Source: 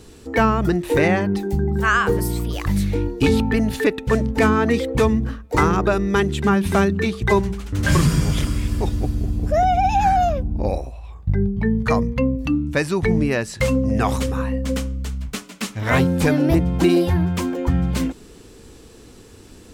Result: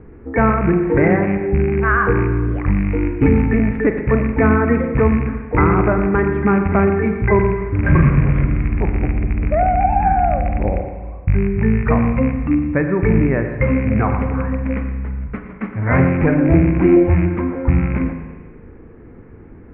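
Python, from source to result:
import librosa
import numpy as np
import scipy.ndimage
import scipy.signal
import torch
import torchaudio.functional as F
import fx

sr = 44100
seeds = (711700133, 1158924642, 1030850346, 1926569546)

y = fx.rattle_buzz(x, sr, strikes_db=-18.0, level_db=-14.0)
y = scipy.signal.sosfilt(scipy.signal.cheby1(5, 1.0, 2200.0, 'lowpass', fs=sr, output='sos'), y)
y = fx.low_shelf(y, sr, hz=410.0, db=5.0)
y = y + 10.0 ** (-13.5 / 20.0) * np.pad(y, (int(117 * sr / 1000.0), 0))[:len(y)]
y = fx.rev_spring(y, sr, rt60_s=1.5, pass_ms=(37, 43), chirp_ms=45, drr_db=6.0)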